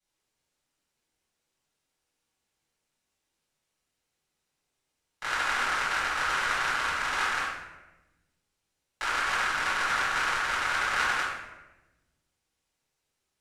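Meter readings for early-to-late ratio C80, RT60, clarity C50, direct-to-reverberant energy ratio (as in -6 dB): 3.5 dB, 1.1 s, 0.0 dB, -11.5 dB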